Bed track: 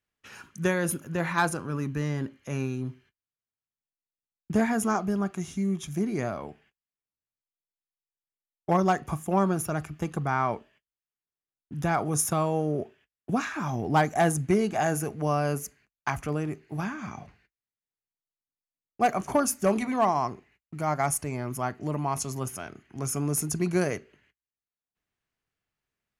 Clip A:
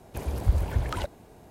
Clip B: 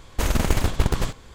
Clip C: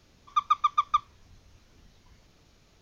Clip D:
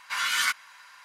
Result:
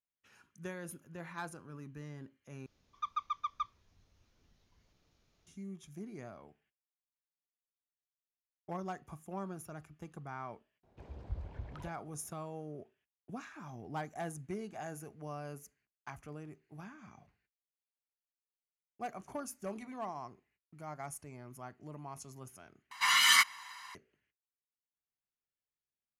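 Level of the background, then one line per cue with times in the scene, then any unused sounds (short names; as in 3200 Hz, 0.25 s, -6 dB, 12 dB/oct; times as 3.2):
bed track -17.5 dB
2.66 replace with C -13 dB
10.83 add A -17.5 dB + air absorption 160 m
22.91 replace with D -0.5 dB + comb 1 ms, depth 73%
not used: B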